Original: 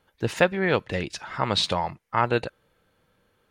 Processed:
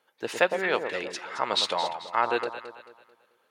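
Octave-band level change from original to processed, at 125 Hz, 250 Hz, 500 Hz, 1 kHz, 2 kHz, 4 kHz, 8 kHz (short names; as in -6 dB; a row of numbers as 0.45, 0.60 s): -19.5, -8.5, -2.5, -1.0, -1.0, -1.0, -1.0 dB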